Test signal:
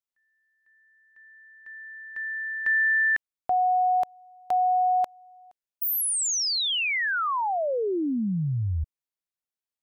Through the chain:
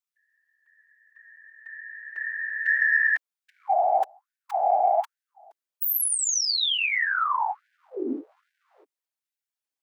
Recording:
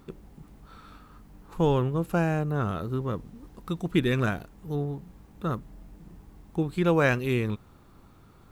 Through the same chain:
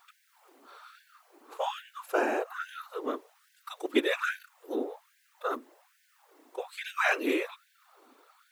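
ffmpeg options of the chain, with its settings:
-af "afftfilt=real='hypot(re,im)*cos(2*PI*random(0))':imag='hypot(re,im)*sin(2*PI*random(1))':win_size=512:overlap=0.75,acontrast=81,afftfilt=real='re*gte(b*sr/1024,240*pow(1500/240,0.5+0.5*sin(2*PI*1.2*pts/sr)))':imag='im*gte(b*sr/1024,240*pow(1500/240,0.5+0.5*sin(2*PI*1.2*pts/sr)))':win_size=1024:overlap=0.75"

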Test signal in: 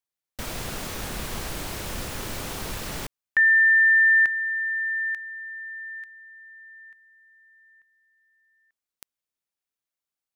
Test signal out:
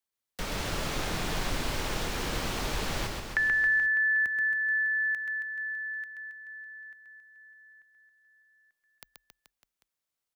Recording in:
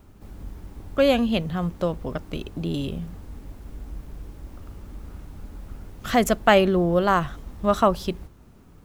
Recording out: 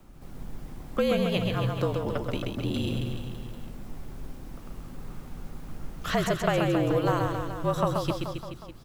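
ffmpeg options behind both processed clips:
-filter_complex "[0:a]acrossover=split=410|6700[a][b][c];[a]acompressor=threshold=-29dB:ratio=4[d];[b]acompressor=threshold=-27dB:ratio=4[e];[c]acompressor=threshold=-50dB:ratio=4[f];[d][e][f]amix=inputs=3:normalize=0,afreqshift=-46,aecho=1:1:130|273|430.3|603.3|793.7:0.631|0.398|0.251|0.158|0.1"

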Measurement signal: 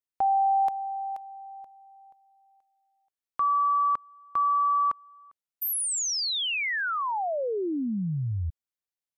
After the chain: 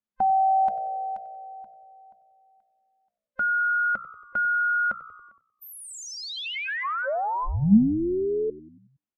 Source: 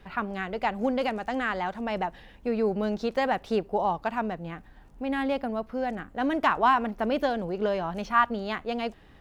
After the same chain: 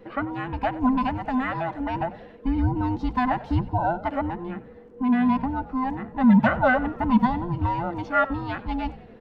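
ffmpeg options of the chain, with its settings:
-filter_complex "[0:a]afftfilt=real='real(if(between(b,1,1008),(2*floor((b-1)/24)+1)*24-b,b),0)':imag='imag(if(between(b,1,1008),(2*floor((b-1)/24)+1)*24-b,b),0)*if(between(b,1,1008),-1,1)':win_size=2048:overlap=0.75,adynamicequalizer=threshold=0.00501:dfrequency=310:dqfactor=4.7:tfrequency=310:tqfactor=4.7:attack=5:release=100:ratio=0.4:range=2:mode=cutabove:tftype=bell,lowpass=f=1.4k:p=1,equalizer=f=210:t=o:w=0.47:g=13.5,bandreject=f=60:t=h:w=6,bandreject=f=120:t=h:w=6,bandreject=f=180:t=h:w=6,asplit=2[a][b];[b]asplit=5[c][d][e][f][g];[c]adelay=93,afreqshift=-60,volume=-18dB[h];[d]adelay=186,afreqshift=-120,volume=-22.7dB[i];[e]adelay=279,afreqshift=-180,volume=-27.5dB[j];[f]adelay=372,afreqshift=-240,volume=-32.2dB[k];[g]adelay=465,afreqshift=-300,volume=-36.9dB[l];[h][i][j][k][l]amix=inputs=5:normalize=0[m];[a][m]amix=inputs=2:normalize=0,volume=3dB"

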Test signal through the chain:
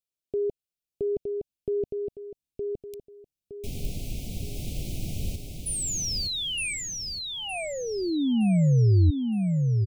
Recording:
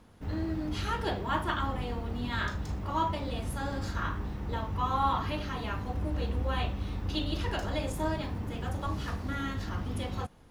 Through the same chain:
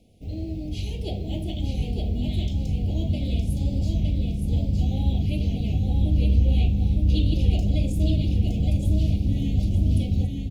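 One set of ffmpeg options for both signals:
-af "asubboost=boost=4.5:cutoff=250,asuperstop=centerf=1300:order=12:qfactor=0.83,aecho=1:1:915|1830|2745|3660:0.631|0.221|0.0773|0.0271"

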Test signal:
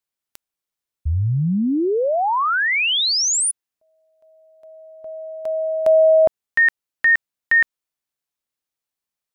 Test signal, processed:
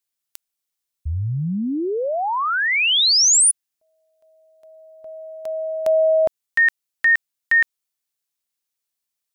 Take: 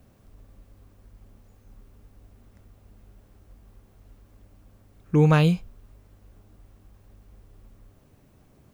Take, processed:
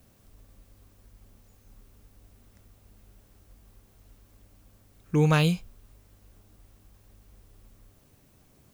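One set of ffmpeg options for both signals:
-af "highshelf=f=2.6k:g=10,volume=-4dB"

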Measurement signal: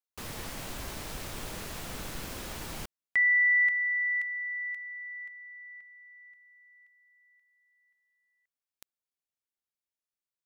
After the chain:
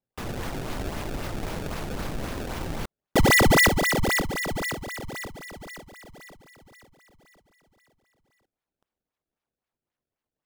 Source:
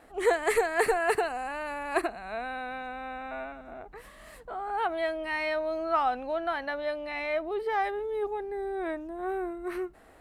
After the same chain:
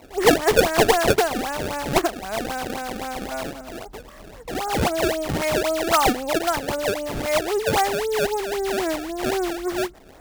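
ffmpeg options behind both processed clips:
-af "highshelf=f=2.5k:g=-8,acrusher=samples=25:mix=1:aa=0.000001:lfo=1:lforange=40:lforate=3.8,volume=9dB"

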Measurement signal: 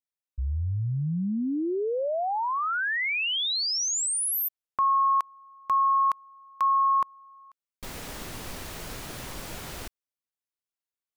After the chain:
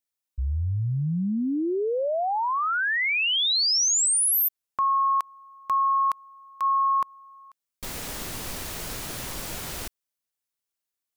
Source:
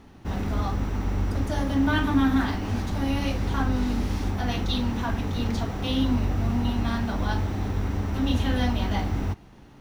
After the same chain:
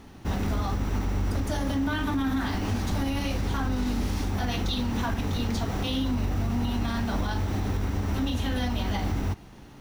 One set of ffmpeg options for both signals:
-af "highshelf=f=4.4k:g=6,alimiter=limit=-21dB:level=0:latency=1:release=89,volume=2dB"

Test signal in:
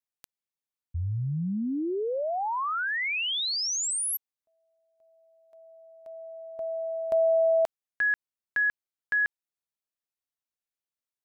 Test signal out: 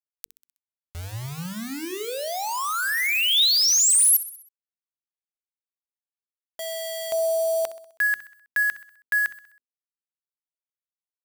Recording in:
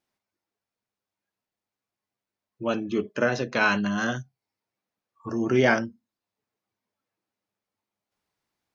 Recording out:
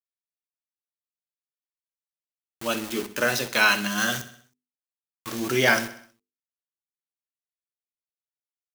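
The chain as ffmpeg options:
-filter_complex "[0:a]adynamicequalizer=threshold=0.00251:dfrequency=3700:dqfactor=6.1:tfrequency=3700:tqfactor=6.1:attack=5:release=100:ratio=0.375:range=2:mode=boostabove:tftype=bell,acontrast=21,aeval=exprs='val(0)*gte(abs(val(0)),0.0316)':c=same,highshelf=f=4.8k:g=-7.5,bandreject=f=50:t=h:w=6,bandreject=f=100:t=h:w=6,bandreject=f=150:t=h:w=6,bandreject=f=200:t=h:w=6,bandreject=f=250:t=h:w=6,bandreject=f=300:t=h:w=6,bandreject=f=350:t=h:w=6,bandreject=f=400:t=h:w=6,bandreject=f=450:t=h:w=6,asplit=2[a][b];[b]aecho=0:1:64|128|192|256|320:0.178|0.0942|0.05|0.0265|0.014[c];[a][c]amix=inputs=2:normalize=0,crystalizer=i=9.5:c=0,volume=-8.5dB"

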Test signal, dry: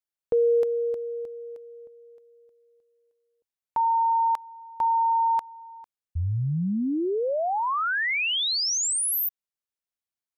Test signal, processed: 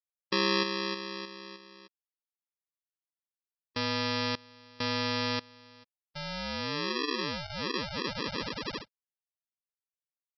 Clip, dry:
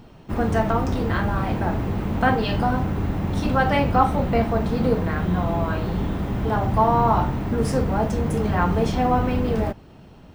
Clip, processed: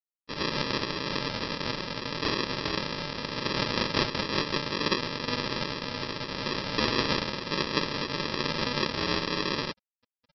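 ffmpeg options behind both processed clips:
-af "afftfilt=real='re*gte(hypot(re,im),0.0708)':imag='im*gte(hypot(re,im),0.0708)':win_size=1024:overlap=0.75,aeval=exprs='val(0)*sin(2*PI*1400*n/s)':c=same,aresample=11025,acrusher=samples=15:mix=1:aa=0.000001,aresample=44100,aemphasis=mode=production:type=riaa,volume=-1dB"

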